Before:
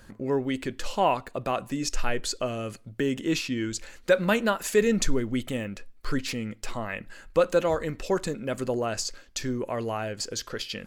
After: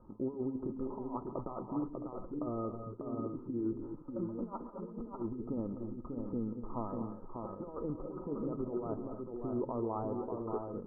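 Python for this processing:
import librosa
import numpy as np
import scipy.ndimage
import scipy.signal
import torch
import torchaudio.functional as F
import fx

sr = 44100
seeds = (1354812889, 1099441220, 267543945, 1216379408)

y = fx.over_compress(x, sr, threshold_db=-30.0, ratio=-0.5)
y = scipy.signal.sosfilt(scipy.signal.cheby1(6, 9, 1300.0, 'lowpass', fs=sr, output='sos'), y)
y = fx.echo_multitap(y, sr, ms=(137, 217, 233, 594, 665), db=(-14.0, -14.0, -11.0, -5.0, -11.5))
y = y * 10.0 ** (-3.5 / 20.0)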